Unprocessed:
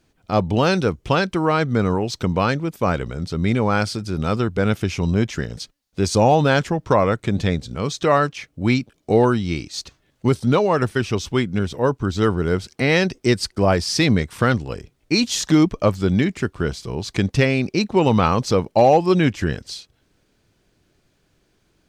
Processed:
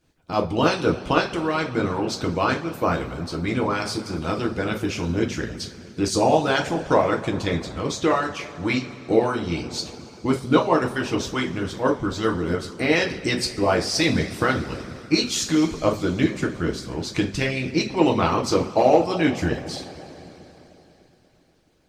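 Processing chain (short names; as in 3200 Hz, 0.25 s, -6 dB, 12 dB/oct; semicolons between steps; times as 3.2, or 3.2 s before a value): two-slope reverb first 0.36 s, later 3.8 s, from -18 dB, DRR -0.5 dB; harmonic-percussive split harmonic -13 dB; gain -1 dB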